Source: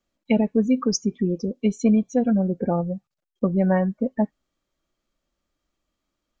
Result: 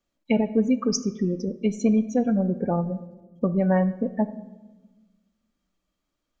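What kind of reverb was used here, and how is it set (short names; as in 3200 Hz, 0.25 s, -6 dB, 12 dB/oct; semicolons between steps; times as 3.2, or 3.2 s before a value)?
shoebox room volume 710 m³, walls mixed, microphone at 0.36 m; gain -1.5 dB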